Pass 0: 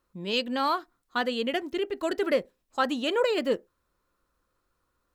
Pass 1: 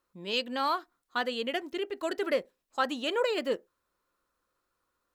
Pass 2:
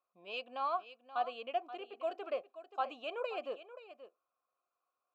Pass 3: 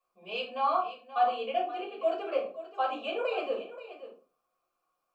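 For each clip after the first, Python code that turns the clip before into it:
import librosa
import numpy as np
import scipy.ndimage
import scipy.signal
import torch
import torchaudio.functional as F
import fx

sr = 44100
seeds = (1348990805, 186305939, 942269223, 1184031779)

y1 = fx.low_shelf(x, sr, hz=200.0, db=-11.0)
y1 = y1 * librosa.db_to_amplitude(-2.0)
y2 = fx.vowel_filter(y1, sr, vowel='a')
y2 = y2 + 10.0 ** (-13.5 / 20.0) * np.pad(y2, (int(529 * sr / 1000.0), 0))[:len(y2)]
y2 = y2 * librosa.db_to_amplitude(3.0)
y3 = fx.room_shoebox(y2, sr, seeds[0], volume_m3=190.0, walls='furnished', distance_m=5.8)
y3 = y3 * librosa.db_to_amplitude(-3.5)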